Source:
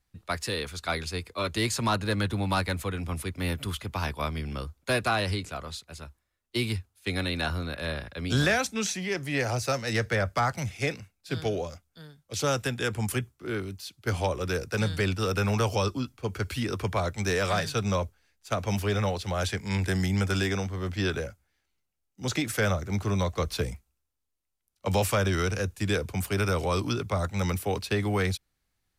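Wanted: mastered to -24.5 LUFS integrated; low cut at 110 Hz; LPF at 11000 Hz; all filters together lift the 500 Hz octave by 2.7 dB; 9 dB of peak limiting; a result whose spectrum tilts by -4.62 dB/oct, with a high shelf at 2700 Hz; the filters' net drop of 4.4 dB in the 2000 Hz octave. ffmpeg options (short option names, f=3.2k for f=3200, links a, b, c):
-af "highpass=110,lowpass=11k,equalizer=f=500:t=o:g=3.5,equalizer=f=2k:t=o:g=-7.5,highshelf=f=2.7k:g=3,volume=8dB,alimiter=limit=-13.5dB:level=0:latency=1"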